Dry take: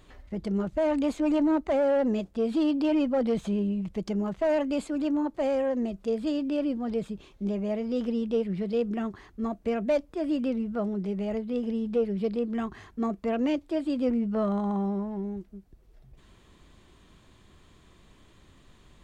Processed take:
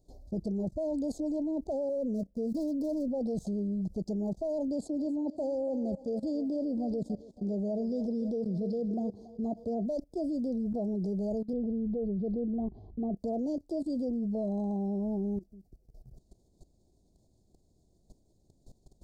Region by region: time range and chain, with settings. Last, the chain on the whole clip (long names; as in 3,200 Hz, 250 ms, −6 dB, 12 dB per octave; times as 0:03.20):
0:01.89–0:03.08: running median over 25 samples + phaser with its sweep stopped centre 520 Hz, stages 8
0:04.68–0:09.86: high-pass filter 54 Hz + high-shelf EQ 7,000 Hz −9 dB + feedback echo with a high-pass in the loop 280 ms, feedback 57%, high-pass 340 Hz, level −13 dB
0:11.53–0:13.17: low-pass filter 2,900 Hz 24 dB per octave + low-shelf EQ 130 Hz +8.5 dB
whole clip: elliptic band-stop filter 720–4,700 Hz, stop band 40 dB; output level in coarse steps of 18 dB; level +4.5 dB